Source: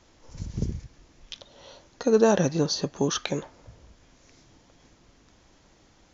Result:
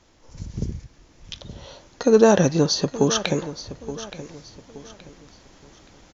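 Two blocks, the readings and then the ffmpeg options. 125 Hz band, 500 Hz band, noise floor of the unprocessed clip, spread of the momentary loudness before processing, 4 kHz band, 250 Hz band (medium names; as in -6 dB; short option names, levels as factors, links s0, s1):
+5.0 dB, +5.5 dB, -60 dBFS, 23 LU, +5.5 dB, +5.5 dB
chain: -af "aecho=1:1:873|1746|2619:0.178|0.0551|0.0171,dynaudnorm=f=280:g=9:m=2.24,aeval=exprs='0.75*(cos(1*acos(clip(val(0)/0.75,-1,1)))-cos(1*PI/2))+0.0106*(cos(5*acos(clip(val(0)/0.75,-1,1)))-cos(5*PI/2))':c=same"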